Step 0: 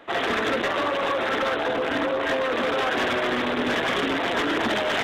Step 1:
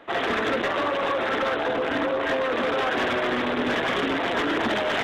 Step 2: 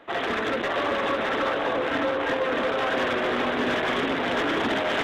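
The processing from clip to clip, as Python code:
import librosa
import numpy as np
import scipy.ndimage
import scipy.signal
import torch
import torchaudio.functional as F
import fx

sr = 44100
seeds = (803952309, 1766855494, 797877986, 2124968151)

y1 = fx.high_shelf(x, sr, hz=4600.0, db=-6.0)
y2 = y1 + 10.0 ** (-4.0 / 20.0) * np.pad(y1, (int(611 * sr / 1000.0), 0))[:len(y1)]
y2 = y2 * 10.0 ** (-2.0 / 20.0)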